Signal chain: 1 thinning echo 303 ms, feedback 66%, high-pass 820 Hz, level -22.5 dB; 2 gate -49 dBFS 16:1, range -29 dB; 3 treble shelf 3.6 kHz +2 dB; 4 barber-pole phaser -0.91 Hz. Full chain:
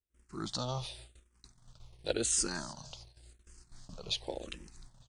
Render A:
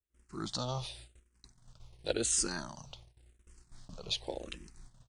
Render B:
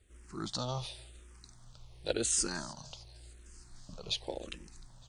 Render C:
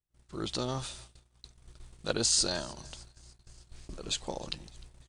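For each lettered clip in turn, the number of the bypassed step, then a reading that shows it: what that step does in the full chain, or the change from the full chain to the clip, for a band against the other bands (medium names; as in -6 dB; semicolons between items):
1, momentary loudness spread change +1 LU; 2, momentary loudness spread change +5 LU; 4, 4 kHz band +3.0 dB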